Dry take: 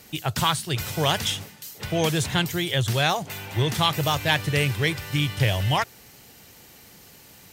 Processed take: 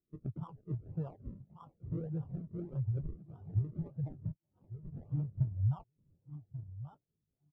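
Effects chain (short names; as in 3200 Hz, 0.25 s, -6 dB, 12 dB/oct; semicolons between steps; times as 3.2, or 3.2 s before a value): 4.32–4.92 band-pass 6200 Hz -> 2000 Hz, Q 11; feedback echo 1.135 s, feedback 23%, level -12.5 dB; compressor 12:1, threshold -27 dBFS, peak gain reduction 12 dB; decimation with a swept rate 39×, swing 100% 1.7 Hz; spectral expander 2.5:1; gain -6.5 dB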